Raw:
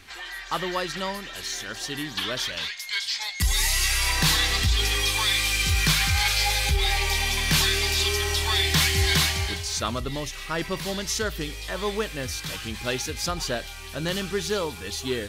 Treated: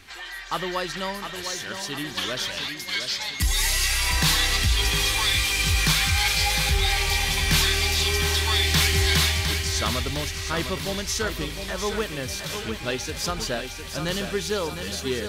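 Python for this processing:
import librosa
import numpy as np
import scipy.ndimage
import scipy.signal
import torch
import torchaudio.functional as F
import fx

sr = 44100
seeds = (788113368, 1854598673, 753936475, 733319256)

p1 = fx.high_shelf(x, sr, hz=8800.0, db=-11.0, at=(12.62, 13.09))
y = p1 + fx.echo_feedback(p1, sr, ms=707, feedback_pct=52, wet_db=-8, dry=0)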